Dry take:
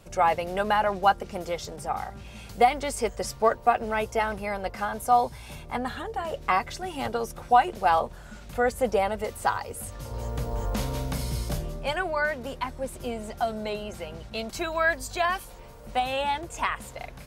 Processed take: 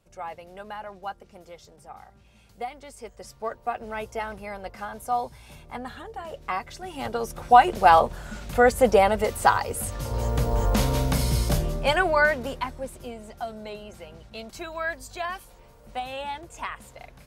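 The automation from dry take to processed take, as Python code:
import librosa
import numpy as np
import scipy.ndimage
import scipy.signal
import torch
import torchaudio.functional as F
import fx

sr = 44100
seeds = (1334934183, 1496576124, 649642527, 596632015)

y = fx.gain(x, sr, db=fx.line((2.96, -14.0), (3.97, -5.5), (6.66, -5.5), (7.73, 6.5), (12.24, 6.5), (13.15, -6.0)))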